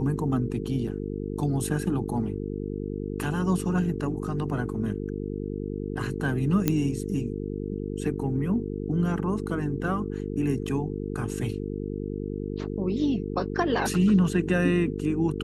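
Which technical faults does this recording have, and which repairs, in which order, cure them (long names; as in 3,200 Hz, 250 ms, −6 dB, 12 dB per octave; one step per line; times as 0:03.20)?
mains buzz 50 Hz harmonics 9 −32 dBFS
0:06.68: click −8 dBFS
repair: click removal
hum removal 50 Hz, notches 9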